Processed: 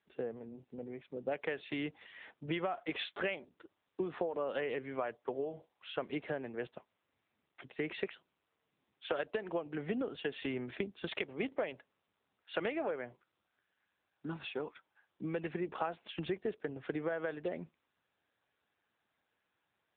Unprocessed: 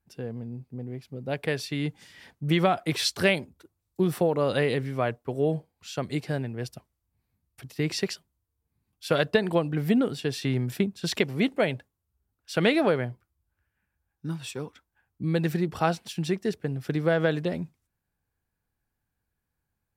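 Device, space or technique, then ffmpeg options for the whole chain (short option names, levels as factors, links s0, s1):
voicemail: -filter_complex "[0:a]asettb=1/sr,asplit=3[s0][s1][s2];[s0]atrim=end=12.574[s3];[s1]atrim=start=12.57:end=13.03,asetpts=PTS-STARTPTS,afade=t=in:d=0.004:c=qsin,afade=t=out:st=0.456:d=0.004:c=qsin,equalizer=f=8700:w=0.47:g=-5[s4];[s2]atrim=start=13.026[s5];[s3][s4]acrossfade=d=0.004:c1=hsin:c2=qsin[s6];[s6][s5]acrossfade=d=0.004:c1=qsin:c2=hsin,highpass=370,lowpass=3200,acompressor=threshold=0.02:ratio=6,volume=1.19" -ar 8000 -c:a libopencore_amrnb -b:a 7950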